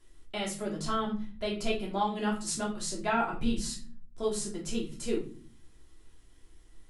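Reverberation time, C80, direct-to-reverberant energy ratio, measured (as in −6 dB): non-exponential decay, 14.5 dB, −4.0 dB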